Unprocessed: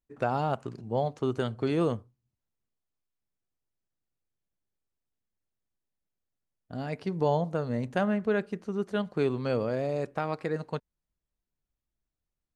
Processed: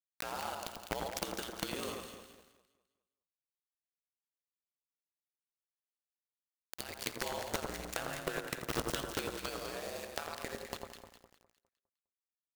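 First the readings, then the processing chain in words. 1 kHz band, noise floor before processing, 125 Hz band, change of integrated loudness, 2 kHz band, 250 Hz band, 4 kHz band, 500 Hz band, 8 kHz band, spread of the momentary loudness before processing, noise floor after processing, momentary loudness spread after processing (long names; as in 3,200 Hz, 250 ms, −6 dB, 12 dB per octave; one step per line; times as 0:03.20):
−8.0 dB, below −85 dBFS, −16.0 dB, −9.5 dB, −2.5 dB, −14.5 dB, +4.5 dB, −12.5 dB, can't be measured, 8 LU, below −85 dBFS, 9 LU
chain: first-order pre-emphasis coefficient 0.97
in parallel at 0 dB: brickwall limiter −38.5 dBFS, peak gain reduction 10.5 dB
on the sum: ring modulation 60 Hz
bit reduction 8 bits
shaped tremolo saw up 10 Hz, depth 30%
gate with flip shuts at −42 dBFS, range −30 dB
sine wavefolder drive 19 dB, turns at −34.5 dBFS
on a send: delay that swaps between a low-pass and a high-pass 102 ms, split 1,400 Hz, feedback 60%, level −3 dB
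on the sum: feedback echo at a low word length 85 ms, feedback 80%, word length 11 bits, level −13 dB
level +12 dB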